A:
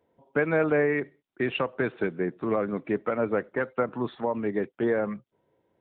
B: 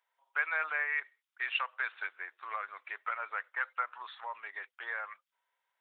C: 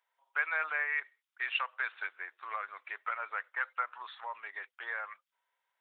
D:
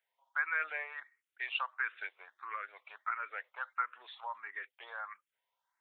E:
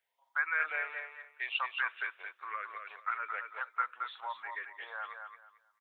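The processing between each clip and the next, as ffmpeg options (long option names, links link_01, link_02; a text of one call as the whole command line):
ffmpeg -i in.wav -af "highpass=frequency=1100:width=0.5412,highpass=frequency=1100:width=1.3066" out.wav
ffmpeg -i in.wav -af anull out.wav
ffmpeg -i in.wav -filter_complex "[0:a]asplit=2[link_01][link_02];[link_02]afreqshift=1.5[link_03];[link_01][link_03]amix=inputs=2:normalize=1" out.wav
ffmpeg -i in.wav -af "aecho=1:1:221|442|663:0.501|0.115|0.0265,volume=1.5dB" out.wav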